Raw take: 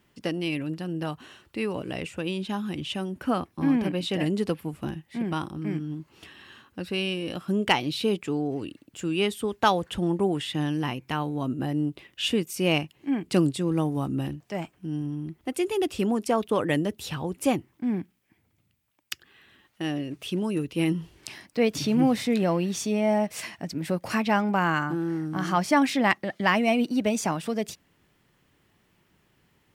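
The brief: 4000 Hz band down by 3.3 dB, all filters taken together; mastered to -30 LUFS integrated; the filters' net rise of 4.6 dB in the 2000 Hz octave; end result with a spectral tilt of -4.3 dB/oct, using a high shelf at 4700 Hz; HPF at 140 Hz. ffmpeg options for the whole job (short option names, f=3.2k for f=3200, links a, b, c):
-af "highpass=140,equalizer=f=2k:t=o:g=8.5,equalizer=f=4k:t=o:g=-8.5,highshelf=f=4.7k:g=-4.5,volume=-3dB"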